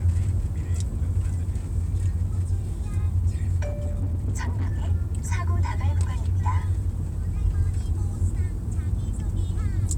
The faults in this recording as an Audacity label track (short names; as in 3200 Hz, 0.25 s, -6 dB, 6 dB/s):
3.620000	4.910000	clipped -22 dBFS